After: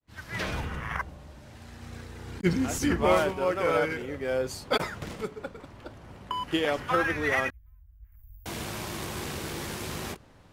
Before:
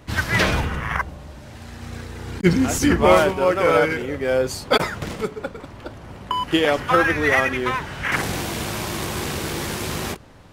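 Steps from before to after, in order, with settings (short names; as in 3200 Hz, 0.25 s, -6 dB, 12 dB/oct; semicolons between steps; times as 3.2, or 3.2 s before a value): opening faded in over 0.76 s; 7.5–8.46 inverse Chebyshev band-stop 160–9700 Hz, stop band 50 dB; gain -8.5 dB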